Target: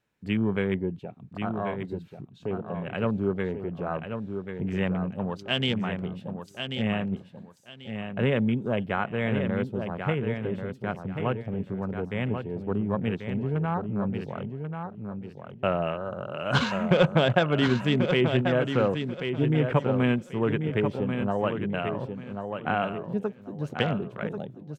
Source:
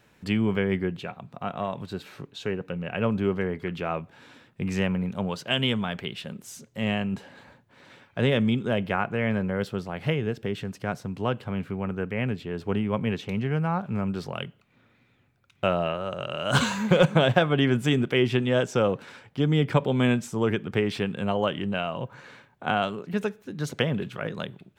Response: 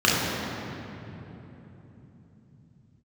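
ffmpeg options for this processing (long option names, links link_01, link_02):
-af "afwtdn=0.02,aecho=1:1:1088|2176|3264:0.447|0.103|0.0236,volume=-1.5dB"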